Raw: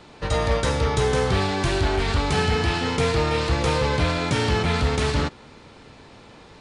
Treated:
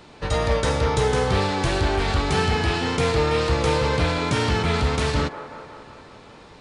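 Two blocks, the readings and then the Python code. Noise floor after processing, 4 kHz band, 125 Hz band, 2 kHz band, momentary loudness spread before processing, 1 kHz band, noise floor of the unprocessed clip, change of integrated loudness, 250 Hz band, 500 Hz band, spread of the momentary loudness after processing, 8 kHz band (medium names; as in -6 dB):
-46 dBFS, 0.0 dB, 0.0 dB, +0.5 dB, 2 LU, +1.0 dB, -47 dBFS, +0.5 dB, 0.0 dB, +1.0 dB, 5 LU, 0.0 dB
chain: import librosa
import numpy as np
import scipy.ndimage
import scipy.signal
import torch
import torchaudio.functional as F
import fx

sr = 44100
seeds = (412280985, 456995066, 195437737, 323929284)

y = fx.echo_wet_bandpass(x, sr, ms=182, feedback_pct=66, hz=770.0, wet_db=-8.0)
y = fx.wow_flutter(y, sr, seeds[0], rate_hz=2.1, depth_cents=22.0)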